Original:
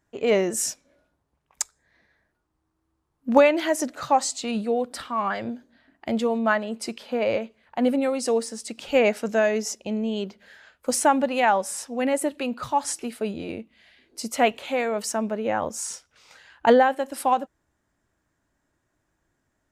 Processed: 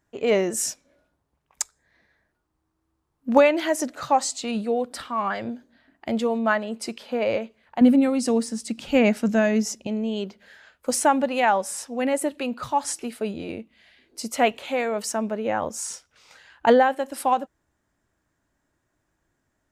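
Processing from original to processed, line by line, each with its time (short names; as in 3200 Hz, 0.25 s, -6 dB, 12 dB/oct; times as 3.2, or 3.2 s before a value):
7.81–9.87 resonant low shelf 320 Hz +7 dB, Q 1.5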